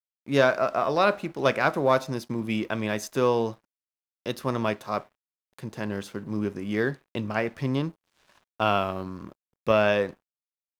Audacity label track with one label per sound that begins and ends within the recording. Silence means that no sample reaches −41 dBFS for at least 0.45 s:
4.260000	5.030000	sound
5.590000	7.910000	sound
8.600000	10.130000	sound